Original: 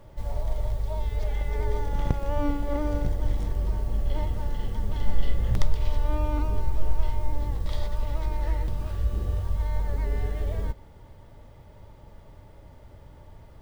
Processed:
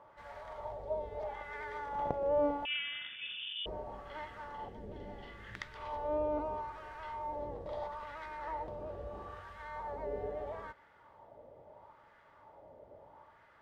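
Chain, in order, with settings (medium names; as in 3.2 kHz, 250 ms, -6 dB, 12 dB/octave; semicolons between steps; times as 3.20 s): wah-wah 0.76 Hz 540–1600 Hz, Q 2.3; 2.65–3.66 s: frequency inversion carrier 3.5 kHz; 4.69–5.75 s: high-order bell 810 Hz -8.5 dB; trim +4.5 dB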